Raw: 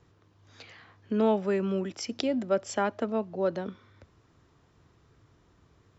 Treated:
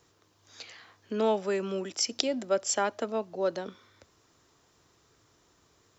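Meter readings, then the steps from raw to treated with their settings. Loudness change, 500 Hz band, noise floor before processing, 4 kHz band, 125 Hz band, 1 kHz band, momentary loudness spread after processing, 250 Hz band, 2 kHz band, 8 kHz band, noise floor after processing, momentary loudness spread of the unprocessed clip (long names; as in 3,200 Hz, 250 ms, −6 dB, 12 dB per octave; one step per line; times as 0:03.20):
−0.5 dB, −1.0 dB, −64 dBFS, +7.0 dB, −7.0 dB, 0.0 dB, 18 LU, −5.5 dB, +0.5 dB, can't be measured, −67 dBFS, 8 LU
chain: bass and treble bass −10 dB, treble +12 dB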